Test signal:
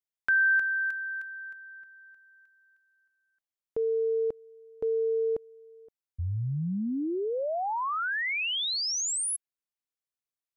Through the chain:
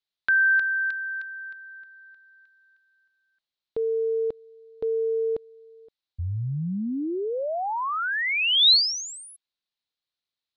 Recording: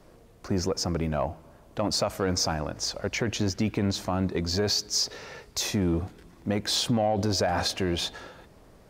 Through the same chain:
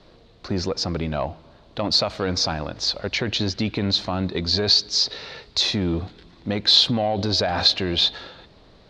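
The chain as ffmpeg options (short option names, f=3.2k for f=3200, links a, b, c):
-af "lowpass=f=4k:t=q:w=4.6,volume=2dB"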